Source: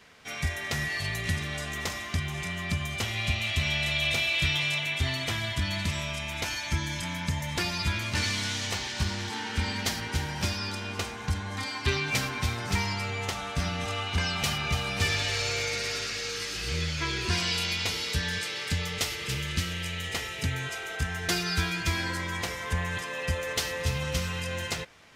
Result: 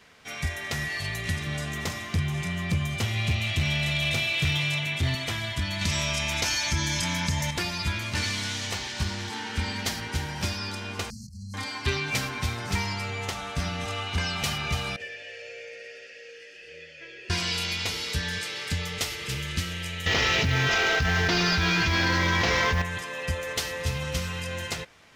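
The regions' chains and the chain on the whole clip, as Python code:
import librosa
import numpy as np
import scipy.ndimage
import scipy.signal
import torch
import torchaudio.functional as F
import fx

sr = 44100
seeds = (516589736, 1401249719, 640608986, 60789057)

y = fx.chain(x, sr, fx.highpass(hz=94.0, slope=24),
    fx.low_shelf(hz=190.0, db=11.5),
    fx.clip_hard(threshold_db=-19.5), at=(1.46, 5.15))
y = fx.chain(y, sr, fx.peak_eq(hz=5600.0, db=7.0, octaves=0.87),
    fx.env_flatten(amount_pct=50), at=(5.81, 7.51))
y = fx.chain(y, sr, fx.over_compress(threshold_db=-38.0, ratio=-1.0),
    fx.brickwall_bandstop(low_hz=250.0, high_hz=4100.0), at=(11.1, 11.54))
y = fx.chain(y, sr, fx.vowel_filter(vowel='e'),
    fx.high_shelf(hz=4100.0, db=6.0),
    fx.notch(hz=3900.0, q=5.2), at=(14.96, 17.3))
y = fx.chain(y, sr, fx.cvsd(bps=32000),
    fx.quant_float(bits=4),
    fx.env_flatten(amount_pct=100), at=(20.06, 22.82))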